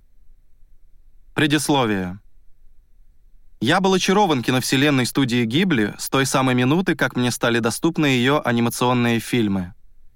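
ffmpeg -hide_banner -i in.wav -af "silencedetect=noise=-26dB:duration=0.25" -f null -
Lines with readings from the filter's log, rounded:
silence_start: 0.00
silence_end: 1.37 | silence_duration: 1.37
silence_start: 2.14
silence_end: 3.62 | silence_duration: 1.48
silence_start: 9.65
silence_end: 10.15 | silence_duration: 0.51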